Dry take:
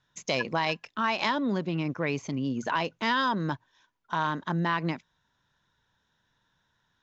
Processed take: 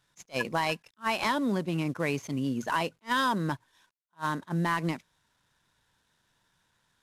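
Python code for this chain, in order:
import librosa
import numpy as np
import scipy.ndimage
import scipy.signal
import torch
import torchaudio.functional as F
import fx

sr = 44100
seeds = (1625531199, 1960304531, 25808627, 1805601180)

y = fx.cvsd(x, sr, bps=64000)
y = fx.attack_slew(y, sr, db_per_s=430.0)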